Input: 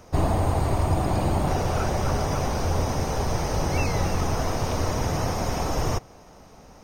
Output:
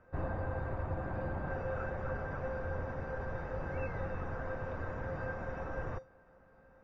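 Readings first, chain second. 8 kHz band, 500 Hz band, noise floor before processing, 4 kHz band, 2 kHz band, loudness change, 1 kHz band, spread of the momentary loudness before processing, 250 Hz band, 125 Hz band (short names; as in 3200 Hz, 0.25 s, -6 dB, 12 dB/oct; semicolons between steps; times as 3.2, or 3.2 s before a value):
under -35 dB, -10.5 dB, -49 dBFS, under -30 dB, -7.0 dB, -13.5 dB, -15.0 dB, 3 LU, -15.5 dB, -15.0 dB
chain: synth low-pass 1600 Hz, resonance Q 2.9; low shelf 380 Hz +4.5 dB; resonator 520 Hz, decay 0.26 s, harmonics odd, mix 90%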